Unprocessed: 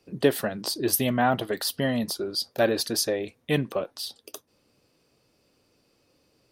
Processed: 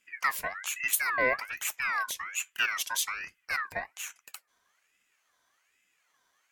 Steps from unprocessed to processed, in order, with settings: static phaser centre 460 Hz, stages 6; ring modulator with a swept carrier 1.8 kHz, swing 30%, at 1.2 Hz

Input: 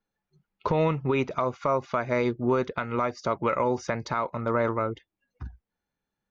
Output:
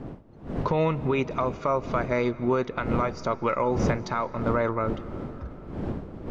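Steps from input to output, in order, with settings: wind noise 310 Hz -34 dBFS; algorithmic reverb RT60 4.1 s, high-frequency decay 0.65×, pre-delay 115 ms, DRR 17.5 dB

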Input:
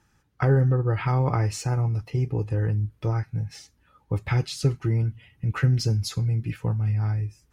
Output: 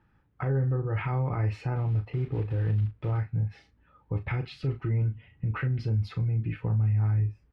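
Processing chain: 1.76–3.20 s: block-companded coder 5-bit; dynamic bell 2.4 kHz, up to +5 dB, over -49 dBFS, Q 1.5; peak limiter -21.5 dBFS, peak gain reduction 10.5 dB; distance through air 430 m; doubling 37 ms -9.5 dB

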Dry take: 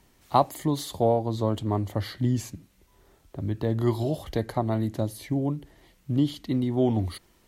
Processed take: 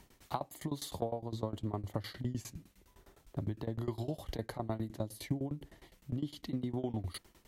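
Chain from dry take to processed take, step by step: compression 6:1, threshold -32 dBFS, peak gain reduction 17 dB; tremolo saw down 9.8 Hz, depth 95%; trim +2.5 dB

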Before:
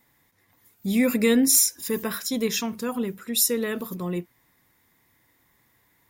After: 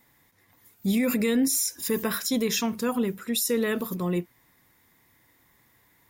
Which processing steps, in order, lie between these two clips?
peak limiter -18.5 dBFS, peak gain reduction 11 dB; trim +2 dB

